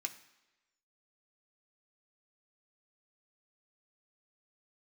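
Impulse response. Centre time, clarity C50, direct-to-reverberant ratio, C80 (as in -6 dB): 10 ms, 13.5 dB, 5.0 dB, 15.5 dB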